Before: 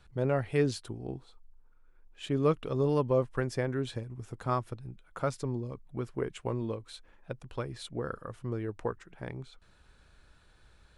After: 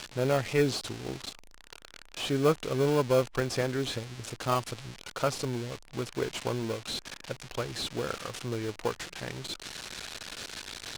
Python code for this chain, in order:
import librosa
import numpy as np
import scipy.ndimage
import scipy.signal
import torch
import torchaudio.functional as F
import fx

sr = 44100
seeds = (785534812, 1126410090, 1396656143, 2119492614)

p1 = x + 0.5 * 10.0 ** (-24.5 / 20.0) * np.diff(np.sign(x), prepend=np.sign(x[:1]))
p2 = scipy.signal.sosfilt(scipy.signal.butter(2, 4700.0, 'lowpass', fs=sr, output='sos'), p1)
p3 = fx.low_shelf(p2, sr, hz=410.0, db=-7.5)
p4 = fx.sample_hold(p3, sr, seeds[0], rate_hz=1900.0, jitter_pct=0)
p5 = p3 + (p4 * 10.0 ** (-8.0 / 20.0))
y = p5 * 10.0 ** (3.5 / 20.0)